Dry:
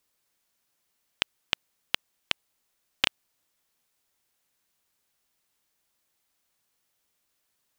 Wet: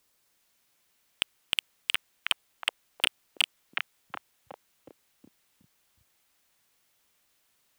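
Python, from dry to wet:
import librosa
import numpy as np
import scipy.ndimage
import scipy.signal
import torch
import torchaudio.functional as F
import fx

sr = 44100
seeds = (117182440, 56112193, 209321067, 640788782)

y = fx.echo_stepped(x, sr, ms=367, hz=2700.0, octaves=-0.7, feedback_pct=70, wet_db=-2.0)
y = np.clip(10.0 ** (15.0 / 20.0) * y, -1.0, 1.0) / 10.0 ** (15.0 / 20.0)
y = F.gain(torch.from_numpy(y), 5.0).numpy()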